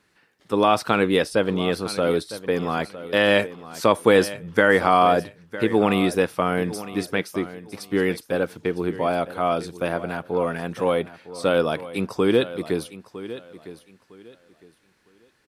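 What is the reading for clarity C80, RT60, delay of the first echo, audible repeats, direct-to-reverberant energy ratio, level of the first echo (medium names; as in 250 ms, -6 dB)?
no reverb, no reverb, 957 ms, 2, no reverb, -15.0 dB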